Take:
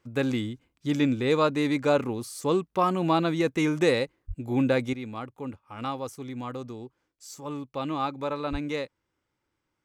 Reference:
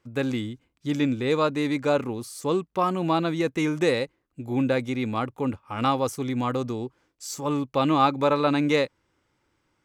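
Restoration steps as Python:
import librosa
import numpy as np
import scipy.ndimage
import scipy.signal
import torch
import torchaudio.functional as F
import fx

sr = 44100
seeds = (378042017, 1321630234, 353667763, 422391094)

y = fx.fix_deplosive(x, sr, at_s=(4.27, 8.51))
y = fx.fix_level(y, sr, at_s=4.93, step_db=9.0)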